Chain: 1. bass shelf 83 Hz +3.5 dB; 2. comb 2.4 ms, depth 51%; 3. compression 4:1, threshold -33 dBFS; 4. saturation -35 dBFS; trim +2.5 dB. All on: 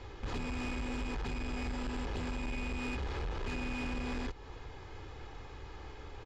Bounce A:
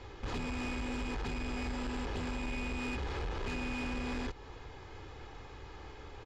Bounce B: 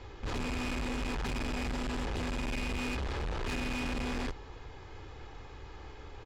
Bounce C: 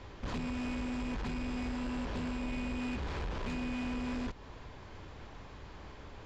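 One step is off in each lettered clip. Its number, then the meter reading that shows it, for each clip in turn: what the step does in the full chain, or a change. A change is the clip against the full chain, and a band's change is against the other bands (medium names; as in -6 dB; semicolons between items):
1, 125 Hz band -2.0 dB; 3, mean gain reduction 5.5 dB; 2, 250 Hz band +5.0 dB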